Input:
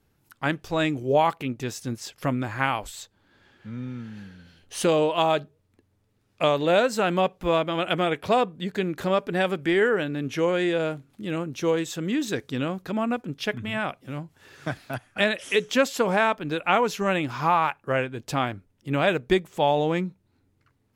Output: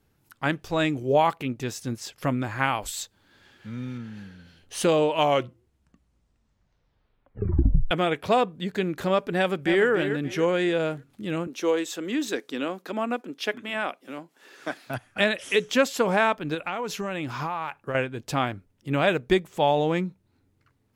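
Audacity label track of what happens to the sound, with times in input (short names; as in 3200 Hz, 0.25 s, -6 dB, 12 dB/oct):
2.820000	3.980000	high shelf 2700 Hz +8 dB
5.000000	5.000000	tape stop 2.91 s
9.370000	9.870000	echo throw 0.29 s, feedback 35%, level -9 dB
11.470000	14.870000	HPF 250 Hz 24 dB/oct
16.540000	17.950000	compressor 12:1, threshold -25 dBFS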